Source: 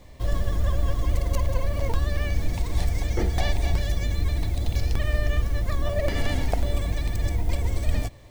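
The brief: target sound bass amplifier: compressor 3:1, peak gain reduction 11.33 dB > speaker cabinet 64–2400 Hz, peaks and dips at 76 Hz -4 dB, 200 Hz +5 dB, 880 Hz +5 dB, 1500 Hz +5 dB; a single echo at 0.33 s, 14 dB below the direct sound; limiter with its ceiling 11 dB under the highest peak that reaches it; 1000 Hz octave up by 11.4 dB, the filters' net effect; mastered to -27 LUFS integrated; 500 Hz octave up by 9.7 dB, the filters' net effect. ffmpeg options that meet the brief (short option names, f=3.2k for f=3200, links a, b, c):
-af "equalizer=f=500:t=o:g=8.5,equalizer=f=1k:t=o:g=8,alimiter=limit=-13.5dB:level=0:latency=1,aecho=1:1:330:0.2,acompressor=threshold=-32dB:ratio=3,highpass=f=64:w=0.5412,highpass=f=64:w=1.3066,equalizer=f=76:t=q:w=4:g=-4,equalizer=f=200:t=q:w=4:g=5,equalizer=f=880:t=q:w=4:g=5,equalizer=f=1.5k:t=q:w=4:g=5,lowpass=f=2.4k:w=0.5412,lowpass=f=2.4k:w=1.3066,volume=9.5dB"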